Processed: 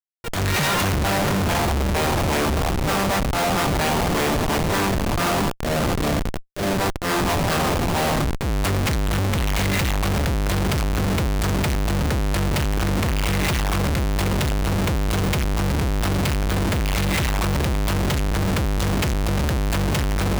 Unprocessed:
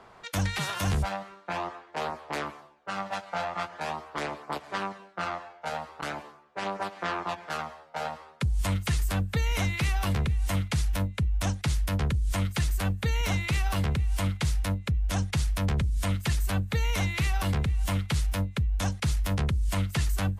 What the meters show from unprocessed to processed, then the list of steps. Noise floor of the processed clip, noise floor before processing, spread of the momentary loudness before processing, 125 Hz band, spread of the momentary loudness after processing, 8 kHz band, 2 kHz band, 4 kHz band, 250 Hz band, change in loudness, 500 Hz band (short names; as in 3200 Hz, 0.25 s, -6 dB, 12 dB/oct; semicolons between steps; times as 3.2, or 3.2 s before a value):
-24 dBFS, -53 dBFS, 8 LU, +6.0 dB, 2 LU, +9.5 dB, +9.0 dB, +9.5 dB, +11.0 dB, +8.0 dB, +12.5 dB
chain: spectral gain 5.42–6.74, 740–3000 Hz -26 dB; bell 1400 Hz -2 dB 0.26 oct; diffused feedback echo 0.618 s, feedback 47%, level -8 dB; Schmitt trigger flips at -36.5 dBFS; transient shaper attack -12 dB, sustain +2 dB; gain +7 dB